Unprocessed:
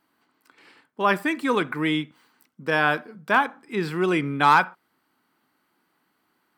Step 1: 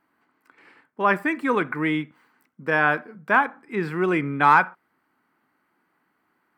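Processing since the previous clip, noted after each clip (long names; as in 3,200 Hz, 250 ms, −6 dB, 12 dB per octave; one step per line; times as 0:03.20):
high shelf with overshoot 2,700 Hz −7.5 dB, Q 1.5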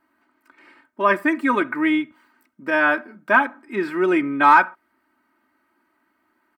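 comb filter 3.2 ms, depth 87%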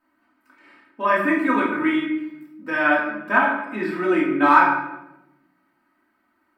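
rectangular room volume 330 cubic metres, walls mixed, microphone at 2 metres
level −6.5 dB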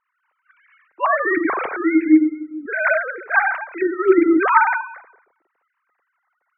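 three sine waves on the formant tracks
level +2.5 dB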